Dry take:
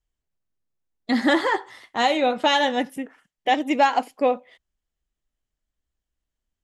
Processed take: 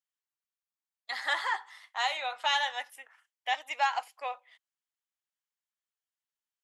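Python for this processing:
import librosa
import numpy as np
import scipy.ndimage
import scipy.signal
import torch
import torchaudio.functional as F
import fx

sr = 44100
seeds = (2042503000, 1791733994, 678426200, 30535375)

y = scipy.signal.sosfilt(scipy.signal.butter(4, 850.0, 'highpass', fs=sr, output='sos'), x)
y = y * 10.0 ** (-6.0 / 20.0)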